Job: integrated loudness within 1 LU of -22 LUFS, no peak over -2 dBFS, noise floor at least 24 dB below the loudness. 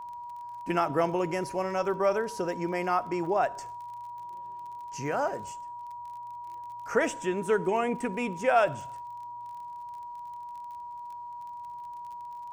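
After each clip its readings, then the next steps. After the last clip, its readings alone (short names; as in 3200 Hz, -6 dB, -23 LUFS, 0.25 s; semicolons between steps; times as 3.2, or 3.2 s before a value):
ticks 33/s; steady tone 960 Hz; tone level -38 dBFS; loudness -31.5 LUFS; peak -11.5 dBFS; loudness target -22.0 LUFS
-> de-click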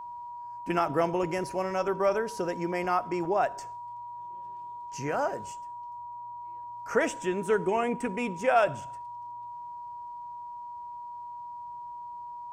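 ticks 0.080/s; steady tone 960 Hz; tone level -38 dBFS
-> notch 960 Hz, Q 30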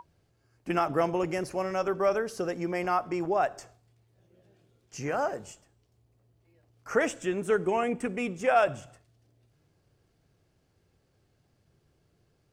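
steady tone none; loudness -29.0 LUFS; peak -12.0 dBFS; loudness target -22.0 LUFS
-> gain +7 dB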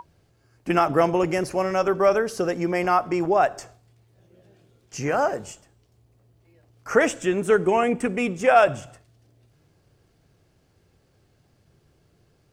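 loudness -22.0 LUFS; peak -5.0 dBFS; noise floor -64 dBFS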